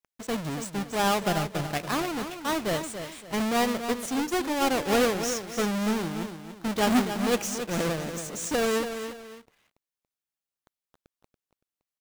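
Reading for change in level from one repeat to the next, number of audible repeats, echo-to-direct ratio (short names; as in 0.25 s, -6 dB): -10.0 dB, 2, -8.5 dB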